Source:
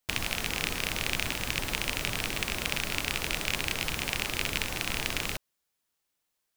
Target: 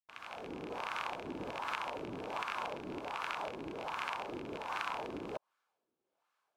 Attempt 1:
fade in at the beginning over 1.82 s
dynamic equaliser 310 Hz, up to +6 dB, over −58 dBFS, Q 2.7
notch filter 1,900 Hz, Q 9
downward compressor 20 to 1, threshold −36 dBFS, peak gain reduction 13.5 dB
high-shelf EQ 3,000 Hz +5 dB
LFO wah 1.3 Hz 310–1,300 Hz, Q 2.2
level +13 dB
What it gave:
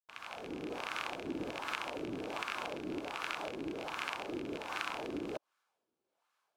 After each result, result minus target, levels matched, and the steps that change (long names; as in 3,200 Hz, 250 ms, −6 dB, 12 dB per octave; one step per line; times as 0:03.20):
8,000 Hz band +4.0 dB; 250 Hz band +3.5 dB
remove: high-shelf EQ 3,000 Hz +5 dB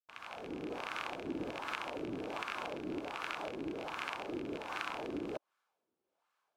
250 Hz band +4.5 dB
change: dynamic equaliser 960 Hz, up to +6 dB, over −58 dBFS, Q 2.7